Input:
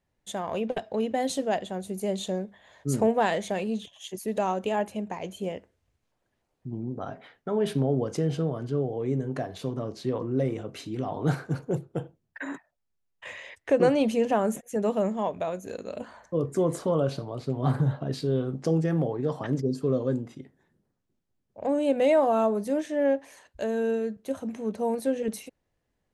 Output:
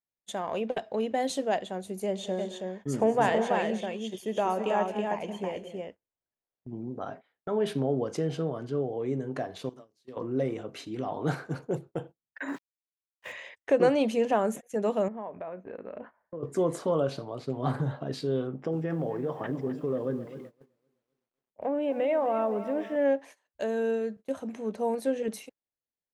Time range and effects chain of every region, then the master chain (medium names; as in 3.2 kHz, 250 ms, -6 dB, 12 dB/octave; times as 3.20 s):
2.06–6.77 s: treble shelf 9 kHz -10.5 dB + band-stop 4 kHz, Q 7.5 + multi-tap echo 100/178/195/219/325 ms -19.5/-18/-18/-15.5/-4 dB
9.69–10.17 s: pre-emphasis filter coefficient 0.8 + hum notches 60/120/180/240/300/360/420/480/540 Hz
12.48–13.32 s: bass shelf 340 Hz +6.5 dB + small samples zeroed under -47 dBFS
15.08–16.43 s: low-pass 2.2 kHz 24 dB/octave + compression 4:1, threshold -34 dBFS
18.47–22.96 s: compression 2.5:1, threshold -24 dBFS + Savitzky-Golay filter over 25 samples + bit-crushed delay 257 ms, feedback 55%, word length 9-bit, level -12.5 dB
whole clip: bass shelf 140 Hz -12 dB; gate -44 dBFS, range -21 dB; treble shelf 7 kHz -5.5 dB